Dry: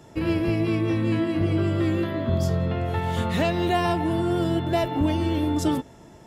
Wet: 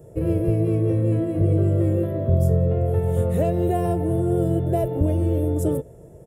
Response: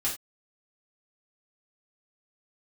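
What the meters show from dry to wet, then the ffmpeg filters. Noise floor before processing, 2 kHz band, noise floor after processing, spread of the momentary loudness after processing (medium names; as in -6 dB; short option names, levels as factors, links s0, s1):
-48 dBFS, -14.0 dB, -45 dBFS, 3 LU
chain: -af "firequalizer=gain_entry='entry(150,0);entry(240,-13);entry(480,5);entry(860,-17);entry(4500,-27);entry(9000,-2)':delay=0.05:min_phase=1,volume=2"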